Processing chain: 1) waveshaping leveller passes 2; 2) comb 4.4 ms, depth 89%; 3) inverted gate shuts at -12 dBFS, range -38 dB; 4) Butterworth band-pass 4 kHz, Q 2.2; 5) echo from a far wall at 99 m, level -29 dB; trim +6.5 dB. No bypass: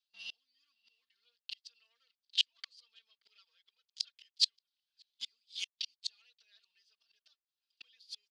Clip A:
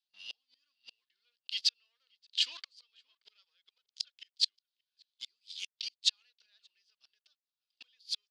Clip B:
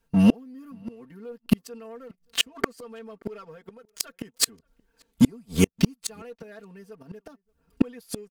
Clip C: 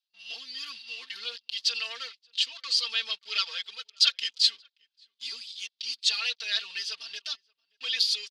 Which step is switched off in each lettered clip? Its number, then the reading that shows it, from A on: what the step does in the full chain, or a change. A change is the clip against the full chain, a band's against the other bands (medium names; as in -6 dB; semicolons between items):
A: 2, crest factor change -1.5 dB; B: 4, crest factor change -8.5 dB; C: 3, momentary loudness spread change -3 LU